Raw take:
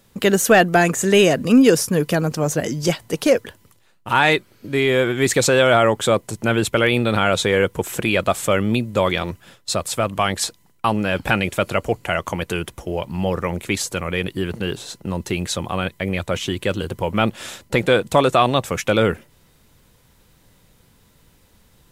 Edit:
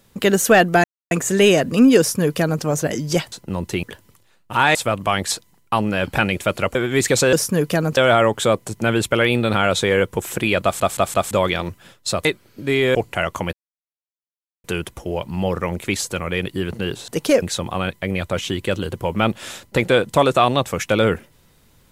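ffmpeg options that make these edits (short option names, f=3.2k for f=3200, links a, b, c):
-filter_complex "[0:a]asplit=17[a][b][c][d][e][f][g][h][i][j][k][l][m][n][o][p][q];[a]atrim=end=0.84,asetpts=PTS-STARTPTS,afade=t=out:st=0.836:d=0.004:c=hsin,apad=pad_dur=0.27[r];[b]atrim=start=0.84:end=3.052,asetpts=PTS-STARTPTS,afade=t=in:d=0.004:c=hsin[s];[c]atrim=start=14.888:end=15.402[t];[d]atrim=start=3.388:end=4.312[u];[e]atrim=start=9.868:end=11.872[v];[f]atrim=start=5.008:end=5.592[w];[g]atrim=start=1.718:end=2.362[x];[h]atrim=start=5.588:end=8.422[y];[i]atrim=start=8.248:end=8.422[z];[j]atrim=start=8.248:end=8.422[aa];[k]atrim=start=8.248:end=8.422[ab];[l]atrim=start=8.928:end=9.872[ac];[m]atrim=start=4.308:end=5.012[ad];[n]atrim=start=11.868:end=12.45,asetpts=PTS-STARTPTS,afade=t=out:st=0.578:d=0.004:c=hsin,apad=pad_dur=1.11[ae];[o]atrim=start=12.45:end=14.892,asetpts=PTS-STARTPTS,afade=t=in:d=0.004:c=hsin[af];[p]atrim=start=3.048:end=3.392[ag];[q]atrim=start=15.398[ah];[r][s]concat=n=2:v=0:a=1[ai];[ai][t]acrossfade=d=0.004:c1=hsin:c2=hsin[aj];[aj][u]acrossfade=d=0.004:c1=hsin:c2=hsin[ak];[ak][v]acrossfade=d=0.004:c1=hsin:c2=hsin[al];[al][w]acrossfade=d=0.004:c1=hsin:c2=hsin[am];[am][x]acrossfade=d=0.004:c1=hsin:c2=hsin[an];[an][y]acrossfade=d=0.004:c1=hsin:c2=hsin[ao];[ao][z]acrossfade=d=0.004:c1=hsin:c2=hsin[ap];[ap][aa]acrossfade=d=0.004:c1=hsin:c2=hsin[aq];[aq][ab]acrossfade=d=0.004:c1=hsin:c2=hsin[ar];[ar][ac]acrossfade=d=0.004:c1=hsin:c2=hsin[as];[as][ad]acrossfade=d=0.004:c1=hsin:c2=hsin[at];[ae][af]concat=n=2:v=0:a=1[au];[at][au]acrossfade=d=0.004:c1=hsin:c2=hsin[av];[av][ag]acrossfade=d=0.004:c1=hsin:c2=hsin[aw];[aw][ah]acrossfade=d=0.004:c1=hsin:c2=hsin"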